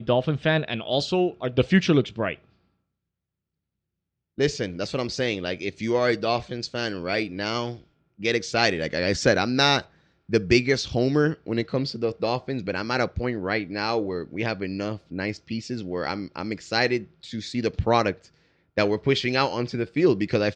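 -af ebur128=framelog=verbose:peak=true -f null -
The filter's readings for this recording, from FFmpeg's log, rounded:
Integrated loudness:
  I:         -25.0 LUFS
  Threshold: -35.2 LUFS
Loudness range:
  LRA:         6.1 LU
  Threshold: -45.9 LUFS
  LRA low:   -29.0 LUFS
  LRA high:  -22.9 LUFS
True peak:
  Peak:       -4.1 dBFS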